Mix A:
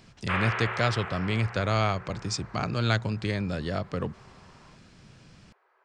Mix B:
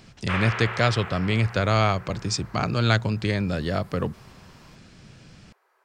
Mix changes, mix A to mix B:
speech +4.5 dB; background: remove LPF 3100 Hz

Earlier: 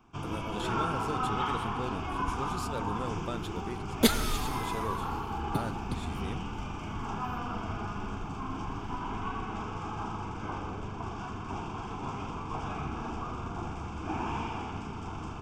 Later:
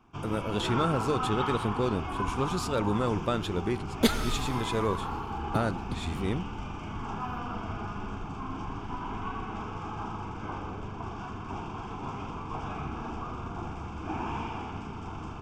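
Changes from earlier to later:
speech +9.0 dB; master: add high shelf 7600 Hz -9 dB

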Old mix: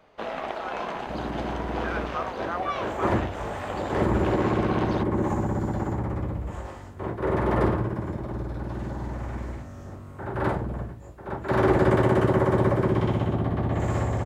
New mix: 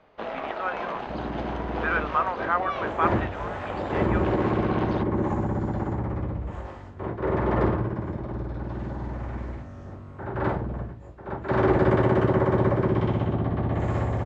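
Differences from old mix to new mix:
speech +9.5 dB; master: add air absorption 130 m

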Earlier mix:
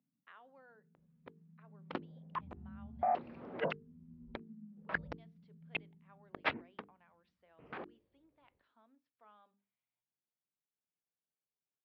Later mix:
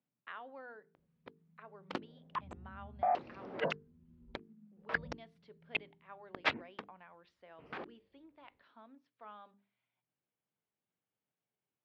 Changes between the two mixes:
speech +11.0 dB; first sound -7.5 dB; second sound: remove air absorption 240 m

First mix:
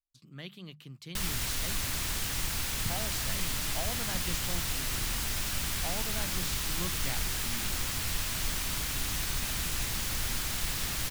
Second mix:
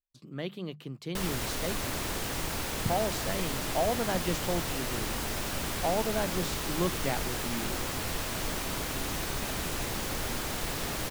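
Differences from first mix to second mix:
background -3.5 dB; master: add bell 470 Hz +14 dB 2.7 oct

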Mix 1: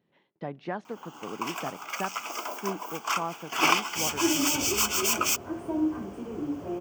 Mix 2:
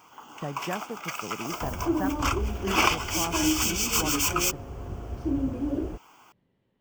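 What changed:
first sound: entry -0.85 s; second sound: entry -2.35 s; master: remove HPF 180 Hz 12 dB/oct

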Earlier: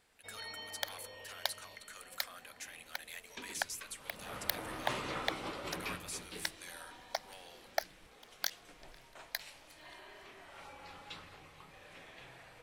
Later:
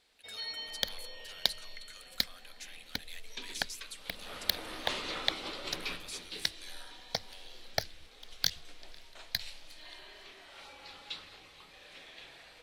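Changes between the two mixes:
speech -4.5 dB; second sound: remove brick-wall FIR high-pass 540 Hz; master: add ten-band EQ 125 Hz -10 dB, 1000 Hz -3 dB, 4000 Hz +10 dB

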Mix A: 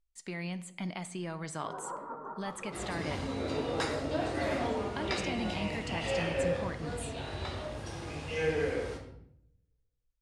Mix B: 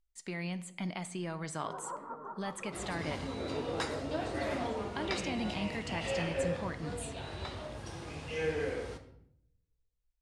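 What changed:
first sound: send -7.5 dB; second sound: send -7.0 dB

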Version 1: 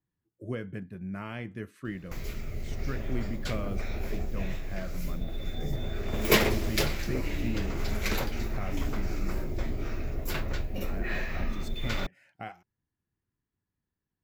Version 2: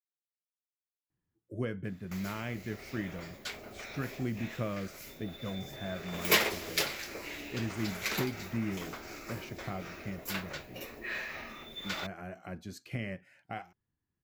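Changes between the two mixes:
speech: entry +1.10 s; background: add HPF 910 Hz 6 dB/oct

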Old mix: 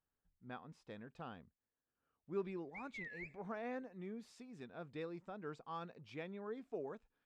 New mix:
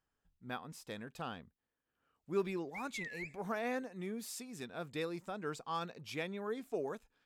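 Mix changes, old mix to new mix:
speech +5.0 dB; master: remove tape spacing loss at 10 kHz 22 dB

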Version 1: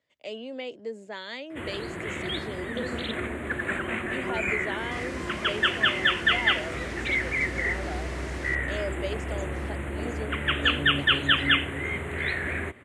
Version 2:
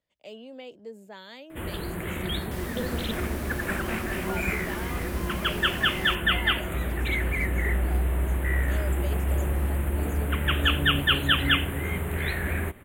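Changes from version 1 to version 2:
speech -6.5 dB; second sound: entry -2.40 s; master: remove speaker cabinet 110–8000 Hz, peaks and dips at 180 Hz -8 dB, 840 Hz -3 dB, 2000 Hz +5 dB

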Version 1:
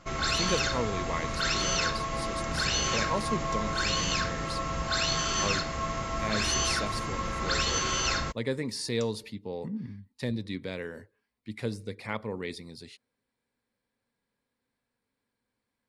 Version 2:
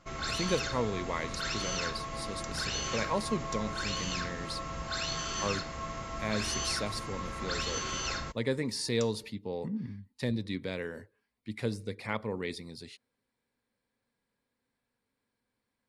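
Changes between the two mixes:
first sound -6.5 dB; second sound +3.5 dB

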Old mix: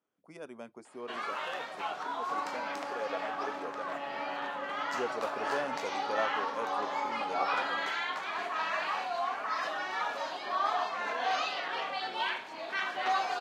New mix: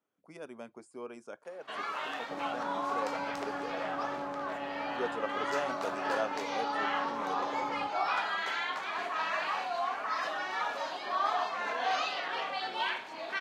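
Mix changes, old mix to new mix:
first sound: entry +0.60 s; second sound: add tilt -3.5 dB/oct

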